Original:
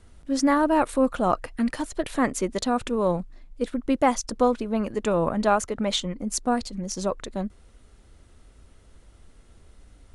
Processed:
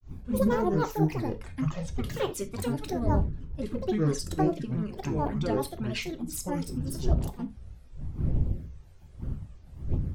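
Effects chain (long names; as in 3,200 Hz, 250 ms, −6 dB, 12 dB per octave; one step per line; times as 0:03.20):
wind on the microphone 100 Hz −31 dBFS
dynamic equaliser 1,200 Hz, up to −7 dB, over −39 dBFS, Q 2.1
flanger swept by the level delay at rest 2.1 ms, full sweep at −16.5 dBFS
granular cloud 166 ms, grains 20 per second, spray 37 ms, pitch spread up and down by 12 semitones
reverb whose tail is shaped and stops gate 110 ms falling, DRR 7.5 dB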